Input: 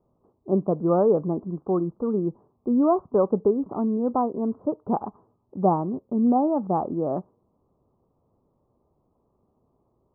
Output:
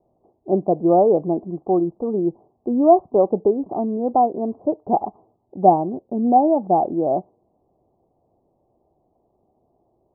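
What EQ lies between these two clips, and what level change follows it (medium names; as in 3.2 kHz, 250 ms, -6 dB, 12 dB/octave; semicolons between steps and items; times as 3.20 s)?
resonant low-pass 730 Hz, resonance Q 4.9; distance through air 480 m; peaking EQ 340 Hz +6.5 dB 0.37 oct; -1.0 dB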